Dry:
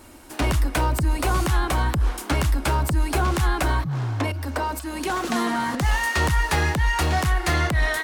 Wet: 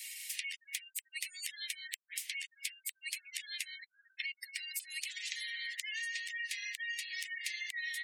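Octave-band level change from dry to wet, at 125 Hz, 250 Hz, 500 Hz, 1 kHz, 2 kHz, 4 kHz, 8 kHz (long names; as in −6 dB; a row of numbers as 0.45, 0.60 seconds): below −40 dB, below −40 dB, below −40 dB, below −40 dB, −12.5 dB, −8.0 dB, −8.5 dB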